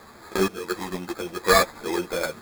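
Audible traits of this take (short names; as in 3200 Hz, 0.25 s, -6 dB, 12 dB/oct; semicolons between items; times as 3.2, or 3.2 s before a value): random-step tremolo 4.3 Hz, depth 75%; aliases and images of a low sample rate 2900 Hz, jitter 0%; a shimmering, thickened sound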